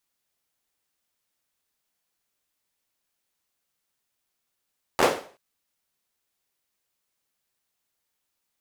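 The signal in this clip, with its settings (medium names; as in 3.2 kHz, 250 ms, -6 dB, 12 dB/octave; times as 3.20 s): hand clap length 0.38 s, apart 12 ms, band 520 Hz, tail 0.42 s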